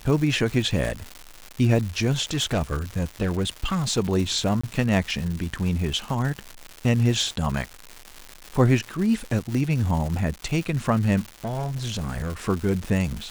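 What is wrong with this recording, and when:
crackle 300 per s -29 dBFS
2.33–3.99 s: clipped -19 dBFS
4.61–4.63 s: dropout 25 ms
11.45–12.37 s: clipped -24 dBFS

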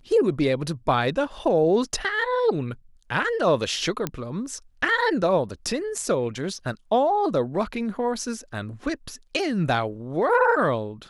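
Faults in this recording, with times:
4.07 s: pop -11 dBFS

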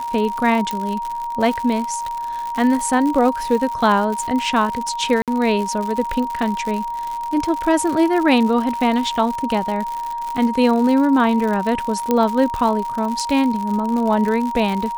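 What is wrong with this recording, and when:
crackle 110 per s -23 dBFS
whine 940 Hz -23 dBFS
0.71 s: pop -10 dBFS
5.22–5.28 s: dropout 57 ms
12.11 s: pop -5 dBFS

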